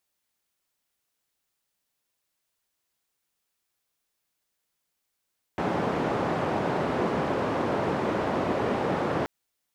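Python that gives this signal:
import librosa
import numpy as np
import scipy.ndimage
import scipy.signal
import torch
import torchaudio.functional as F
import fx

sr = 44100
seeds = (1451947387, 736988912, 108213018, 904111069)

y = fx.band_noise(sr, seeds[0], length_s=3.68, low_hz=130.0, high_hz=710.0, level_db=-27.0)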